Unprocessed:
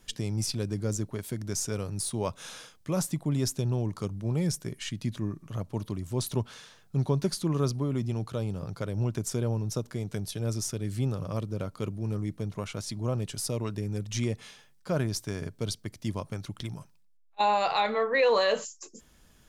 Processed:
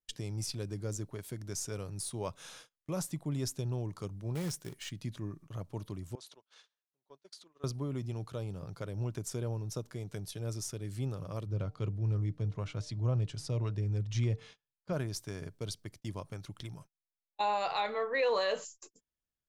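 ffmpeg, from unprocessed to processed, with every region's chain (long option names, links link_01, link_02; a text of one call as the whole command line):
ffmpeg -i in.wav -filter_complex "[0:a]asettb=1/sr,asplit=3[link_01][link_02][link_03];[link_01]atrim=end=4.354[link_04];[link_02]atrim=start=4.35:end=4.9,asetpts=PTS-STARTPTS,afade=type=in:duration=0.004:curve=qsin,afade=type=out:start_time=0.546:duration=0.004:curve=qsin,lowshelf=frequency=140:gain=-4,acrusher=bits=3:mode=log:mix=0:aa=0.000001[link_05];[link_03]atrim=start=4.896[link_06];[link_04][link_05]acrossfade=duration=0.004:curve1=hsin:curve2=qsin[link_07];[link_07][link_06]acrossfade=duration=0.004:curve1=qsin:curve2=hsin,asettb=1/sr,asplit=3[link_08][link_09][link_10];[link_08]atrim=end=6.154[link_11];[link_09]atrim=start=6.15:end=7.64,asetpts=PTS-STARTPTS,afade=type=in:duration=0.004:curve=qsin,afade=type=out:start_time=1.486:duration=0.004:curve=qsin,adynamicequalizer=threshold=0.00316:dfrequency=3800:dqfactor=1.7:tfrequency=3800:tqfactor=1.7:attack=5:release=100:ratio=0.375:range=2:mode=boostabove:tftype=bell,acompressor=threshold=-40dB:ratio=3:attack=3.2:release=140:knee=1:detection=peak,highpass=470,lowpass=7400[link_12];[link_10]atrim=start=7.636[link_13];[link_11][link_12]acrossfade=duration=0.004:curve1=hsin:curve2=qsin[link_14];[link_14][link_13]acrossfade=duration=0.004:curve1=qsin:curve2=hsin,asettb=1/sr,asplit=3[link_15][link_16][link_17];[link_15]atrim=end=11.464[link_18];[link_16]atrim=start=11.46:end=14.93,asetpts=PTS-STARTPTS,afade=type=in:duration=0.004:curve=qsin,afade=type=out:start_time=3.466:duration=0.004:curve=qsin,lowpass=5600,equalizer=frequency=110:width_type=o:width=1.1:gain=8.5,bandreject=frequency=150.2:width_type=h:width=4,bandreject=frequency=300.4:width_type=h:width=4,bandreject=frequency=450.6:width_type=h:width=4,bandreject=frequency=600.8:width_type=h:width=4,bandreject=frequency=751:width_type=h:width=4[link_19];[link_17]atrim=start=14.926[link_20];[link_18][link_19]acrossfade=duration=0.004:curve1=hsin:curve2=qsin[link_21];[link_21][link_20]acrossfade=duration=0.004:curve1=qsin:curve2=hsin,agate=range=-30dB:threshold=-45dB:ratio=16:detection=peak,equalizer=frequency=220:width_type=o:width=0.26:gain=-6.5,volume=-6.5dB" out.wav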